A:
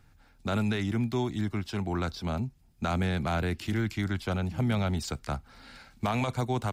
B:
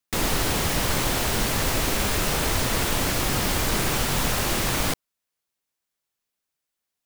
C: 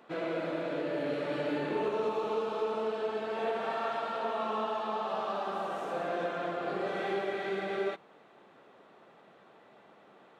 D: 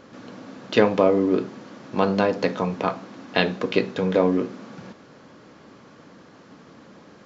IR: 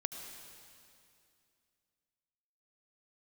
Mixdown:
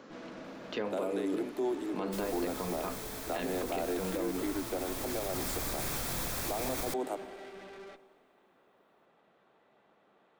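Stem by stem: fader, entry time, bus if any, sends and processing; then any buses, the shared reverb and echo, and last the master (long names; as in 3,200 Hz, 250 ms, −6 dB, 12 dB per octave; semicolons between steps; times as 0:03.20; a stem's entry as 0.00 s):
−0.5 dB, 0.45 s, send −6 dB, Chebyshev high-pass filter 260 Hz, order 10; flat-topped bell 2,500 Hz −14.5 dB 2.9 octaves
0:04.63 −20.5 dB → 0:05.42 −13 dB, 2.00 s, no send, high-shelf EQ 8,600 Hz +7.5 dB; notch filter 2,900 Hz, Q 8.9
−8.0 dB, 0.00 s, send −11.5 dB, tube saturation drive 41 dB, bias 0.6
−13.0 dB, 0.00 s, no send, high-pass filter 160 Hz; multiband upward and downward compressor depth 40%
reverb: on, RT60 2.5 s, pre-delay 68 ms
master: brickwall limiter −24.5 dBFS, peak gain reduction 8.5 dB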